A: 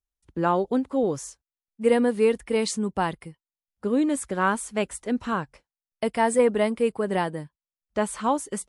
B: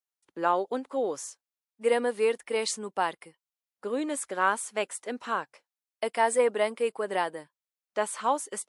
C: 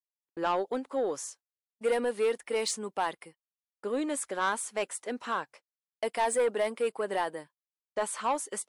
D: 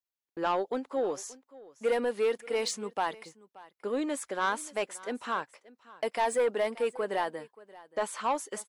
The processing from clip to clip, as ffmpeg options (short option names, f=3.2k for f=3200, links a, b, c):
-af "highpass=470,volume=-1dB"
-af "asoftclip=type=tanh:threshold=-20.5dB,agate=range=-33dB:threshold=-52dB:ratio=16:detection=peak"
-af "equalizer=f=9.1k:w=3.1:g=-8.5,aecho=1:1:579:0.0944"